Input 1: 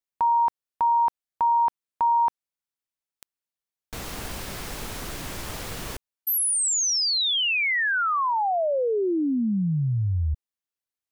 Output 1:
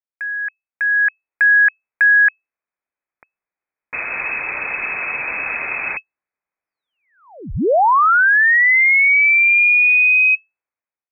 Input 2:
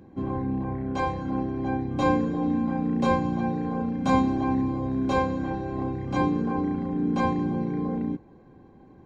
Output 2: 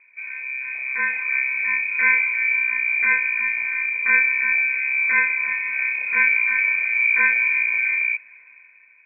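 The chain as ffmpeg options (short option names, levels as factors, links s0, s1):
-af "lowpass=f=2200:t=q:w=0.5098,lowpass=f=2200:t=q:w=0.6013,lowpass=f=2200:t=q:w=0.9,lowpass=f=2200:t=q:w=2.563,afreqshift=-2600,dynaudnorm=f=380:g=5:m=6.31,volume=0.596"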